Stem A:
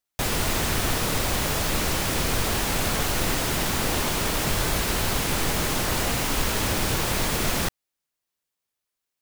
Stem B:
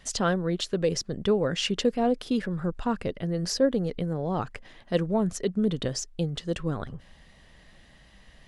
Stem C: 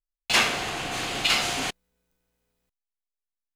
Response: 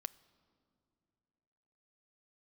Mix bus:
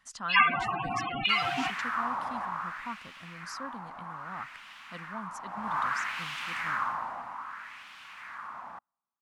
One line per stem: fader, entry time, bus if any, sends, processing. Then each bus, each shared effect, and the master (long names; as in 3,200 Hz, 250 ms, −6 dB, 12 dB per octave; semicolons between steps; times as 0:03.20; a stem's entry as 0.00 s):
0:02.28 −4.5 dB → 0:03.07 −14.5 dB → 0:05.37 −14.5 dB → 0:05.78 −2.5 dB → 0:06.73 −2.5 dB → 0:07.45 −14 dB, 1.10 s, send −21 dB, auto-filter band-pass sine 0.62 Hz 770–3,000 Hz
−15.0 dB, 0.00 s, no send, spectral tilt +2.5 dB per octave
−1.5 dB, 0.00 s, send −3.5 dB, spectral peaks only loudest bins 16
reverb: on, RT60 2.7 s, pre-delay 5 ms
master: drawn EQ curve 110 Hz 0 dB, 240 Hz +4 dB, 430 Hz −13 dB, 1,100 Hz +12 dB, 3,400 Hz −5 dB